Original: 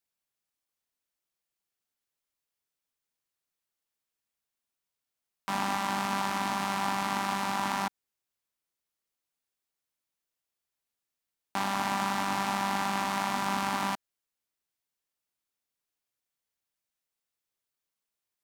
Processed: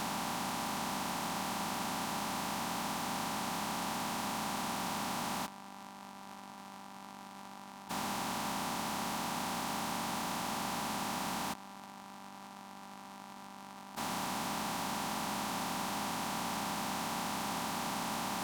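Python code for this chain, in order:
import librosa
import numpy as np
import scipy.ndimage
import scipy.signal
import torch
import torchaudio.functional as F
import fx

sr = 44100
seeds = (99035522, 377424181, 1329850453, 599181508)

y = fx.bin_compress(x, sr, power=0.2)
y = fx.peak_eq(y, sr, hz=1800.0, db=-5.5, octaves=1.4)
y = fx.over_compress(y, sr, threshold_db=-37.0, ratio=-0.5)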